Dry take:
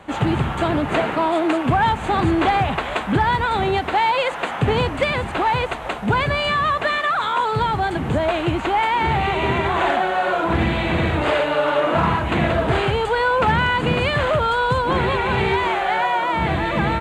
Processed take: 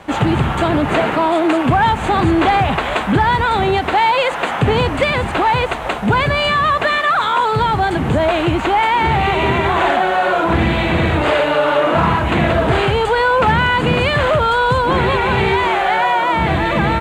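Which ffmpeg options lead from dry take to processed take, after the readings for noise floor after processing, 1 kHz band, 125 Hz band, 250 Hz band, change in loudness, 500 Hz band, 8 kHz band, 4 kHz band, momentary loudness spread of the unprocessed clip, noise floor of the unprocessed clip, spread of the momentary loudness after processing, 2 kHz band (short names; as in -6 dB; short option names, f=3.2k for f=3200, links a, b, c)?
-21 dBFS, +4.5 dB, +4.5 dB, +4.5 dB, +4.5 dB, +4.5 dB, n/a, +4.5 dB, 3 LU, -28 dBFS, 3 LU, +4.5 dB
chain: -filter_complex "[0:a]asplit=2[a][b];[b]alimiter=limit=-16dB:level=0:latency=1,volume=1.5dB[c];[a][c]amix=inputs=2:normalize=0,aeval=exprs='sgn(val(0))*max(abs(val(0))-0.00376,0)':c=same"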